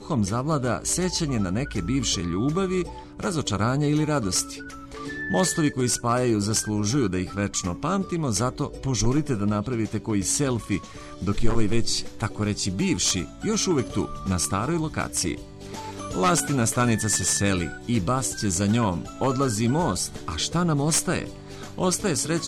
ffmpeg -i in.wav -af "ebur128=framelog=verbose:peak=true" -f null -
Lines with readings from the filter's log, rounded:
Integrated loudness:
  I:         -24.6 LUFS
  Threshold: -34.9 LUFS
Loudness range:
  LRA:         2.4 LU
  Threshold: -44.9 LUFS
  LRA low:   -25.9 LUFS
  LRA high:  -23.5 LUFS
True peak:
  Peak:       -5.6 dBFS